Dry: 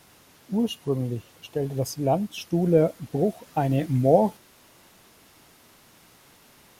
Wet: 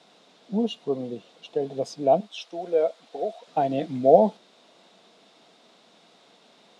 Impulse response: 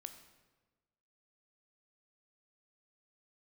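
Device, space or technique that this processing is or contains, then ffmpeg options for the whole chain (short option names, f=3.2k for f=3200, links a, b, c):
television speaker: -filter_complex "[0:a]asettb=1/sr,asplit=3[a][b][c];[a]atrim=end=2.204[d];[b]atrim=start=2.2:end=3.47,asetpts=PTS-STARTPTS,afade=t=in:d=0.004:c=qsin,afade=t=out:st=1.266:d=0.004:c=qsin,highpass=610[e];[c]atrim=start=3.466[f];[d][e]acrossfade=d=0.004:c1=hsin:c2=qsin[g];[g][f]acrossfade=d=0.004:c1=qsin:c2=hsin,highpass=f=180:w=0.5412,highpass=f=180:w=1.3066,equalizer=f=200:t=q:w=4:g=5,equalizer=f=470:t=q:w=4:g=6,equalizer=f=680:t=q:w=4:g=9,equalizer=f=1.8k:t=q:w=4:g=-3,equalizer=f=3.7k:t=q:w=4:g=9,equalizer=f=6.3k:t=q:w=4:g=-4,lowpass=f=7.2k:w=0.5412,lowpass=f=7.2k:w=1.3066,volume=-3.5dB"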